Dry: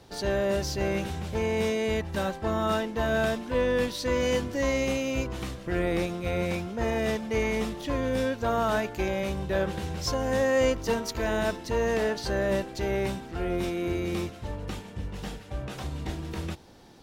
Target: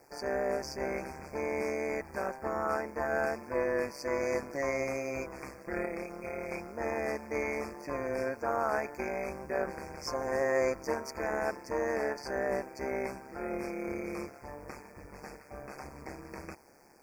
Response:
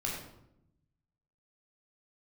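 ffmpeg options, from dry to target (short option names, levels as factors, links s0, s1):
-filter_complex "[0:a]bass=f=250:g=-14,treble=f=4000:g=-5,asettb=1/sr,asplit=3[s0][s1][s2];[s0]atrim=end=5.854[s3];[s1]atrim=start=5.85:end=6.52,asetpts=PTS-STARTPTS,afade=t=in:d=0.004:c=qsin,afade=t=out:st=0.666:d=0.004:c=qsin,acompressor=threshold=0.02:ratio=2[s4];[s2]atrim=start=6.516[s5];[s3][s4]acrossfade=d=0.004:c1=hsin:c2=qsin[s6];[s6][s5]acrossfade=d=0.004:c1=qsin:c2=hsin,acrusher=bits=9:mix=0:aa=0.000001,tremolo=f=140:d=0.857,asuperstop=centerf=3400:order=20:qfactor=1.7"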